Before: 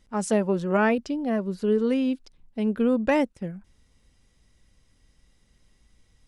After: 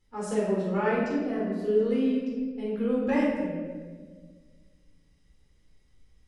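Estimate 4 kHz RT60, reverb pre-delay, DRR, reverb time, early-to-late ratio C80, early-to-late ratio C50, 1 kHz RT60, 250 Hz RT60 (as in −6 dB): 1.0 s, 12 ms, −6.5 dB, 1.6 s, 2.5 dB, −0.5 dB, 1.3 s, 2.1 s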